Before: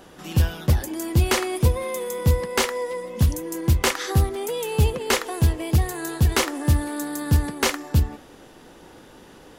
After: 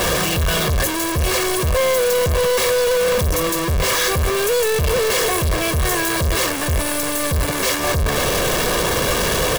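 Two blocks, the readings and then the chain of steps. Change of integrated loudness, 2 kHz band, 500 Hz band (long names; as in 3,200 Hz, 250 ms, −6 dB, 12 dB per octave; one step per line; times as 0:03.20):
+5.0 dB, +8.5 dB, +10.0 dB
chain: sign of each sample alone
comb filter 1.8 ms, depth 61%
level +3 dB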